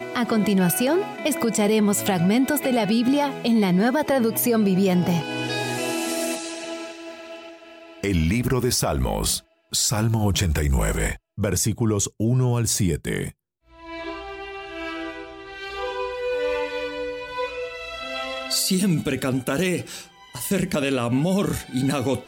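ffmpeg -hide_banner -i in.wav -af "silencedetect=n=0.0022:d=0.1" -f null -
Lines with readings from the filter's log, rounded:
silence_start: 9.52
silence_end: 9.71 | silence_duration: 0.19
silence_start: 11.18
silence_end: 11.38 | silence_duration: 0.19
silence_start: 13.32
silence_end: 13.67 | silence_duration: 0.34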